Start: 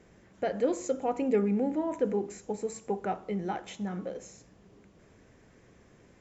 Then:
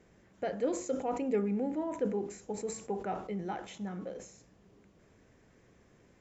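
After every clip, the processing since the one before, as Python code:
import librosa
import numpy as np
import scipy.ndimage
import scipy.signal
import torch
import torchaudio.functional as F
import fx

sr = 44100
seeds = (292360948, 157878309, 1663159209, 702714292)

y = fx.sustainer(x, sr, db_per_s=100.0)
y = y * librosa.db_to_amplitude(-4.5)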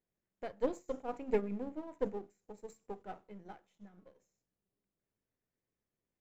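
y = np.where(x < 0.0, 10.0 ** (-7.0 / 20.0) * x, x)
y = fx.upward_expand(y, sr, threshold_db=-48.0, expansion=2.5)
y = y * librosa.db_to_amplitude(3.5)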